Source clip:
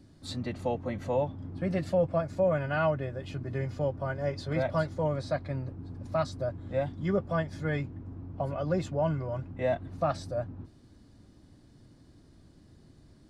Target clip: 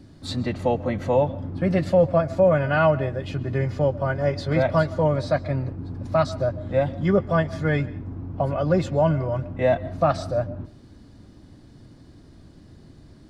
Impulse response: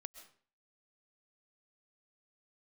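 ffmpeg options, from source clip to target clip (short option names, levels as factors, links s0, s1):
-filter_complex "[0:a]asplit=2[s0][s1];[1:a]atrim=start_sample=2205,lowpass=6400[s2];[s1][s2]afir=irnorm=-1:irlink=0,volume=0.944[s3];[s0][s3]amix=inputs=2:normalize=0,volume=1.78"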